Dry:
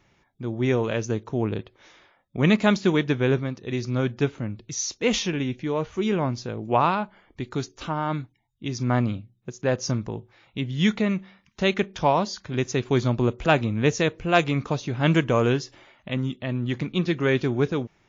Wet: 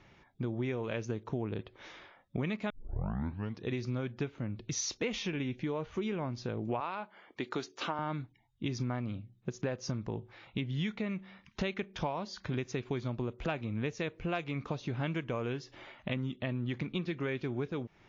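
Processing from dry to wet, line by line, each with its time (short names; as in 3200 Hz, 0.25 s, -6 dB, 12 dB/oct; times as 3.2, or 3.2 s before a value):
2.7 tape start 0.94 s
6.8–7.99 Bessel high-pass 370 Hz
whole clip: LPF 4700 Hz 12 dB/oct; dynamic EQ 2300 Hz, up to +4 dB, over -43 dBFS, Q 4.9; compressor 12:1, threshold -34 dBFS; gain +2.5 dB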